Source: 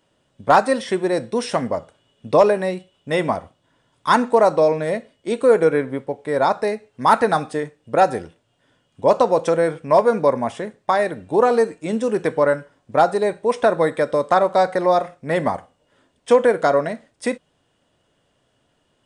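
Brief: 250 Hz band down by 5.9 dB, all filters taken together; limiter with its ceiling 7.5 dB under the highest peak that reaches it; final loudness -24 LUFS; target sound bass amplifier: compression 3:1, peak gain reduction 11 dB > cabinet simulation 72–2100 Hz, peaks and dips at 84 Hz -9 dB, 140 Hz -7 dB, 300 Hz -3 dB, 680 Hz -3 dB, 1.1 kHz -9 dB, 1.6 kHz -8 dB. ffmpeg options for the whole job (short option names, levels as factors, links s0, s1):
-af "equalizer=f=250:t=o:g=-5.5,alimiter=limit=0.282:level=0:latency=1,acompressor=threshold=0.0355:ratio=3,highpass=f=72:w=0.5412,highpass=f=72:w=1.3066,equalizer=f=84:t=q:w=4:g=-9,equalizer=f=140:t=q:w=4:g=-7,equalizer=f=300:t=q:w=4:g=-3,equalizer=f=680:t=q:w=4:g=-3,equalizer=f=1100:t=q:w=4:g=-9,equalizer=f=1600:t=q:w=4:g=-8,lowpass=f=2100:w=0.5412,lowpass=f=2100:w=1.3066,volume=3.16"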